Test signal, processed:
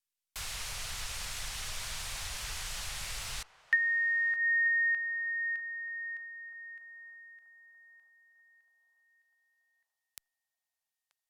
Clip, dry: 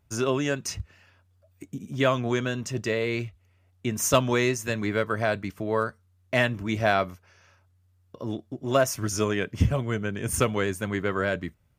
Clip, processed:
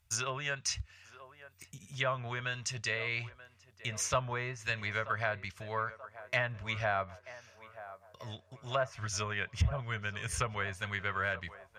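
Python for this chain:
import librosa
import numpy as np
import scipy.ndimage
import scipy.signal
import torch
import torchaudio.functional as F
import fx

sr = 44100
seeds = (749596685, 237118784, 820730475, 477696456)

p1 = fx.env_lowpass_down(x, sr, base_hz=1200.0, full_db=-19.0)
p2 = fx.tone_stack(p1, sr, knobs='10-0-10')
p3 = p2 + fx.echo_banded(p2, sr, ms=933, feedback_pct=57, hz=730.0, wet_db=-14.0, dry=0)
y = F.gain(torch.from_numpy(p3), 4.0).numpy()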